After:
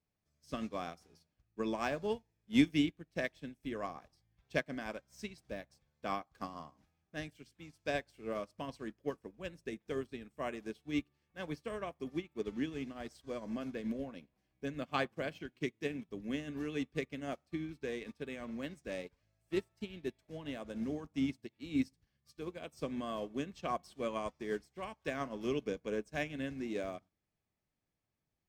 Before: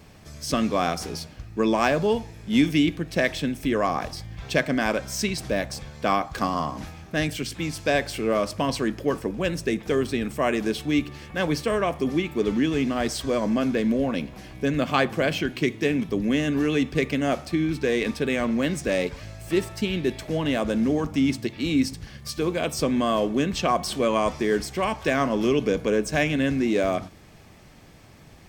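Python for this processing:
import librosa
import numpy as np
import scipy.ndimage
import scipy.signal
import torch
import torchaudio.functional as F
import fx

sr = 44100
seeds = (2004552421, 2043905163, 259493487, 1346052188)

y = fx.upward_expand(x, sr, threshold_db=-37.0, expansion=2.5)
y = F.gain(torch.from_numpy(y), -6.0).numpy()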